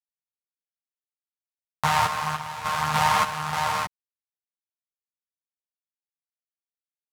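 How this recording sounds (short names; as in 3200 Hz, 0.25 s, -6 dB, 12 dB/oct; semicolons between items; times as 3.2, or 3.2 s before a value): a quantiser's noise floor 10-bit, dither none; random-step tremolo 3.4 Hz, depth 80%; a shimmering, thickened sound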